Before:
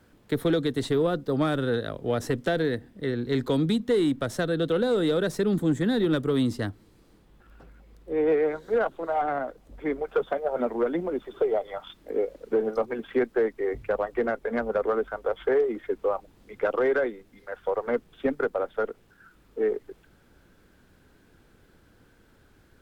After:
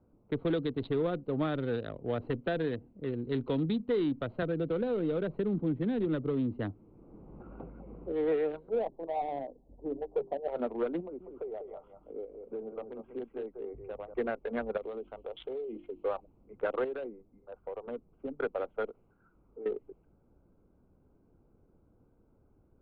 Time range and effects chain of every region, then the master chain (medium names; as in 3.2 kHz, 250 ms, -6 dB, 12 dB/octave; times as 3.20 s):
4.42–8.12 s: distance through air 280 m + three bands compressed up and down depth 70%
8.69–10.48 s: steep low-pass 940 Hz 48 dB/octave + hum notches 50/100/150/200/250/300/350/400 Hz
11.01–14.14 s: compression 1.5:1, threshold -43 dBFS + delay 193 ms -7 dB
14.77–16.04 s: resonant high shelf 2.3 kHz +11 dB, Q 3 + hum notches 50/100/150/200/250/300/350 Hz + compression 3:1, threshold -30 dBFS
16.84–18.37 s: compression 2:1, threshold -30 dBFS + distance through air 400 m
18.90–19.66 s: peaking EQ 1.5 kHz +5 dB 1.7 oct + compression 3:1, threshold -37 dBFS
whole clip: local Wiener filter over 25 samples; level-controlled noise filter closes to 1.6 kHz, open at -20.5 dBFS; steep low-pass 4 kHz 48 dB/octave; trim -6 dB